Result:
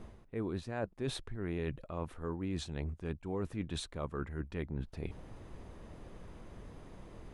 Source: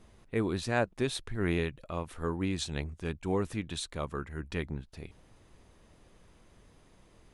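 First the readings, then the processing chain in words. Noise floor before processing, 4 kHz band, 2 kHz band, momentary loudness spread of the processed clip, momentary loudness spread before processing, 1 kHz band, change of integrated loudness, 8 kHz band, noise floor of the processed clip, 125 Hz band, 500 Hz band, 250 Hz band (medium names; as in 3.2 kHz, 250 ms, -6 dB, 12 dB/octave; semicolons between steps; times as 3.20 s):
-61 dBFS, -6.5 dB, -10.0 dB, 14 LU, 9 LU, -7.5 dB, -6.0 dB, -8.0 dB, -58 dBFS, -3.5 dB, -6.0 dB, -5.0 dB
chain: treble shelf 2.1 kHz -11.5 dB; reverse; compression 5:1, threshold -46 dBFS, peak gain reduction 19.5 dB; reverse; trim +10 dB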